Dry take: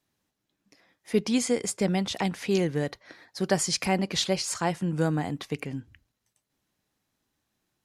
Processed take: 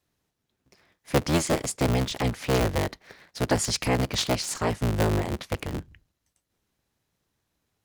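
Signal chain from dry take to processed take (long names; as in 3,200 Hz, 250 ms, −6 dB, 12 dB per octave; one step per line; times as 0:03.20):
sub-harmonics by changed cycles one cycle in 3, inverted
parametric band 81 Hz +6 dB 1.9 octaves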